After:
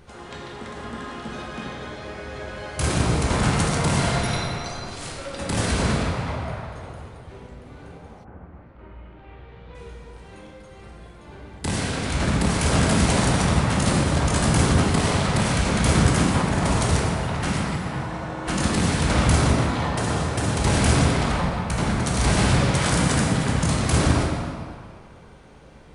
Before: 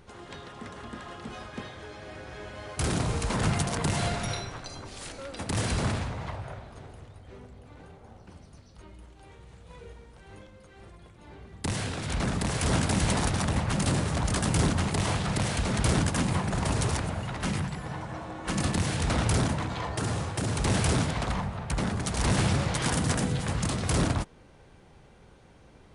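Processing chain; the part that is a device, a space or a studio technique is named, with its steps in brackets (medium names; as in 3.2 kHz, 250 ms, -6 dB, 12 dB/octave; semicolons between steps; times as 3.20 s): stairwell (reverberation RT60 2.1 s, pre-delay 12 ms, DRR -2.5 dB); 8.23–9.74 s: low-pass 1.7 kHz -> 4 kHz 24 dB/octave; trim +3 dB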